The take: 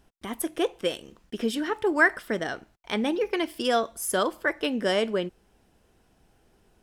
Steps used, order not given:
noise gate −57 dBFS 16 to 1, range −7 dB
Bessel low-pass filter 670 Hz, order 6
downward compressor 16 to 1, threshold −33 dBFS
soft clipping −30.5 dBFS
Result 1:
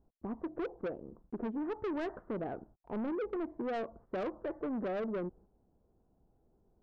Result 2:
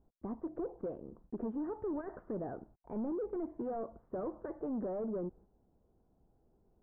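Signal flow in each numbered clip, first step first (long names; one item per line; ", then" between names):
Bessel low-pass filter, then soft clipping, then noise gate, then downward compressor
soft clipping, then downward compressor, then noise gate, then Bessel low-pass filter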